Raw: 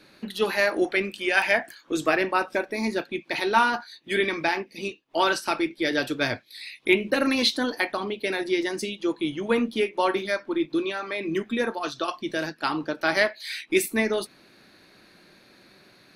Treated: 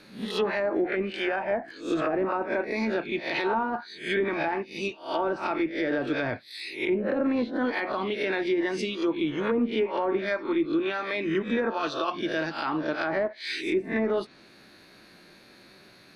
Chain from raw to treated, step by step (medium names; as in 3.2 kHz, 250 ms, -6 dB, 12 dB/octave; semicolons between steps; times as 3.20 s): reverse spectral sustain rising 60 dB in 0.38 s; low-pass that closes with the level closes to 700 Hz, closed at -17 dBFS; peak limiter -17.5 dBFS, peak gain reduction 8.5 dB